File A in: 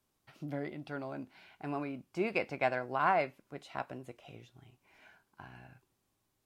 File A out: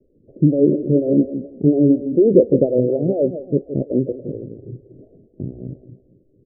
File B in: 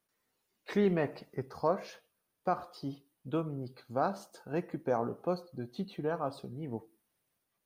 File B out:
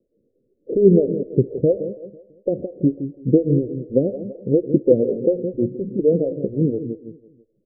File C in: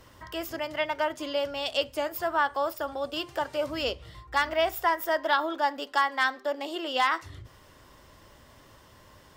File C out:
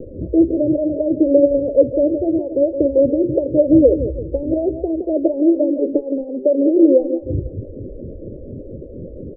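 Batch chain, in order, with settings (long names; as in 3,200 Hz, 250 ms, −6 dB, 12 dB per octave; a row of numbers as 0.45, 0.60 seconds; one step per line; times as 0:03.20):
downward compressor 2 to 1, threshold −34 dBFS
Butterworth low-pass 540 Hz 72 dB per octave
on a send: repeating echo 166 ms, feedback 39%, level −11 dB
on the sum: phaser with staggered stages 4.2 Hz
normalise the peak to −1.5 dBFS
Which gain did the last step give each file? +29.5, +23.5, +29.5 decibels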